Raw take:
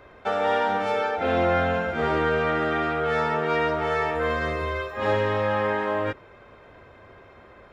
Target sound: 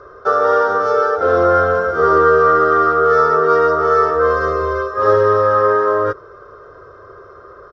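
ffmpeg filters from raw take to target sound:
ffmpeg -i in.wav -af "firequalizer=gain_entry='entry(130,0);entry(220,-11);entry(410,11);entry(840,-7);entry(1200,15);entry(2300,-19);entry(5500,8);entry(9700,-28)':delay=0.05:min_phase=1,volume=4dB" out.wav

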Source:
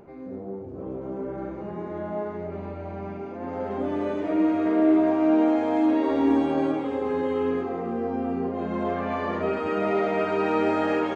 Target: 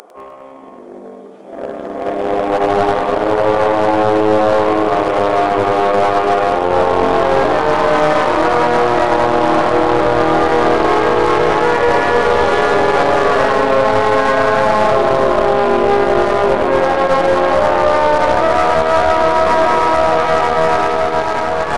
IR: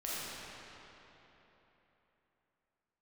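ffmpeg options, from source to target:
-filter_complex "[0:a]highpass=frequency=1100:width=0.5412,highpass=frequency=1100:width=1.3066,areverse,acompressor=threshold=-45dB:ratio=20,areverse,aeval=exprs='clip(val(0),-1,0.00376)':channel_layout=same,aeval=exprs='0.0126*(cos(1*acos(clip(val(0)/0.0126,-1,1)))-cos(1*PI/2))+0.0002*(cos(5*acos(clip(val(0)/0.0126,-1,1)))-cos(5*PI/2))+0.00126*(cos(7*acos(clip(val(0)/0.0126,-1,1)))-cos(7*PI/2))':channel_layout=same,asetrate=22579,aresample=44100,dynaudnorm=framelen=550:gausssize=7:maxgain=9.5dB,asplit=2[link_01][link_02];[link_02]aecho=0:1:101|202|303|404|505|606:0.251|0.136|0.0732|0.0396|0.0214|0.0115[link_03];[link_01][link_03]amix=inputs=2:normalize=0,alimiter=level_in=33dB:limit=-1dB:release=50:level=0:latency=1,volume=-1dB"

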